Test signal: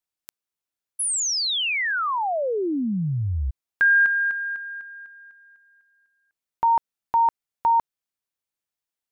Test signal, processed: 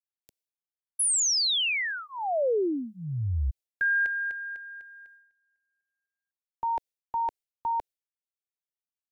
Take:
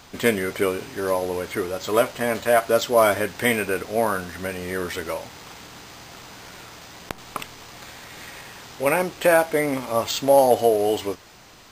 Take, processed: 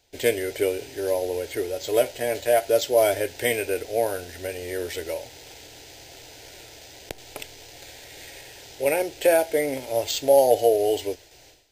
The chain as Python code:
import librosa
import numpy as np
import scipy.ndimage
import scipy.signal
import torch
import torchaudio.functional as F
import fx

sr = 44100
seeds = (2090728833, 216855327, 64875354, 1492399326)

y = fx.fixed_phaser(x, sr, hz=480.0, stages=4)
y = fx.gate_hold(y, sr, open_db=-39.0, close_db=-46.0, hold_ms=71.0, range_db=-15, attack_ms=2.0, release_ms=187.0)